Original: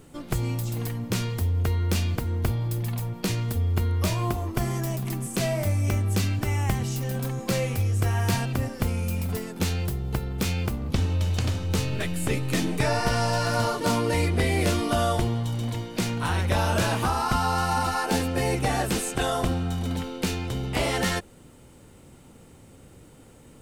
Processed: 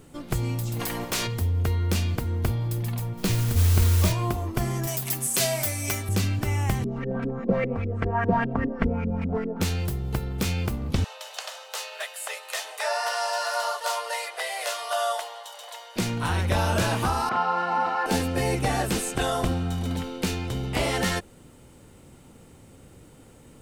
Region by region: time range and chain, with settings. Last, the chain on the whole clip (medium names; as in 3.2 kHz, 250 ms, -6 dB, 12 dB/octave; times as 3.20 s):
0.79–1.26 s: spectral peaks clipped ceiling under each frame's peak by 22 dB + hard clipper -21.5 dBFS
3.17–4.12 s: bass shelf 74 Hz +11.5 dB + modulation noise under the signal 14 dB
4.87–6.09 s: tilt EQ +3 dB/octave + comb 7.4 ms, depth 61%
6.84–9.61 s: LFO low-pass saw up 5 Hz 280–2300 Hz + comb 4.4 ms, depth 69%
11.04–15.96 s: steep high-pass 560 Hz 48 dB/octave + band-stop 2.3 kHz, Q 11
17.29–18.06 s: band-pass 340–2100 Hz + doubling 40 ms -3 dB
whole clip: none